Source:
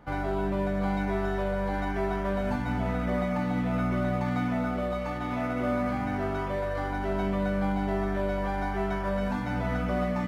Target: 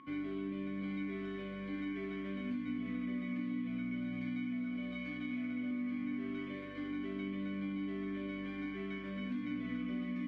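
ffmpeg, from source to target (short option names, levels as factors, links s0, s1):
-filter_complex "[0:a]aeval=exprs='val(0)+0.0398*sin(2*PI*1100*n/s)':c=same,asplit=3[s0][s1][s2];[s0]bandpass=f=270:t=q:w=8,volume=1[s3];[s1]bandpass=f=2290:t=q:w=8,volume=0.501[s4];[s2]bandpass=f=3010:t=q:w=8,volume=0.355[s5];[s3][s4][s5]amix=inputs=3:normalize=0,acompressor=threshold=0.01:ratio=6,asettb=1/sr,asplit=3[s6][s7][s8];[s6]atrim=end=3.674[s9];[s7]atrim=start=3.67:end=5.71,asetpts=PTS-STARTPTS,afade=t=in:d=0.004:c=qsin,afade=t=out:st=2.036:d=0.004:c=qsin,aecho=1:1:1.3:0.47,atrim=end_sample=89964[s10];[s8]atrim=start=5.706[s11];[s9][s10]acrossfade=d=0.004:c1=hsin:c2=qsin[s12];[s12][s11]acrossfade=d=0.004:c1=qsin:c2=hsin,volume=1.78"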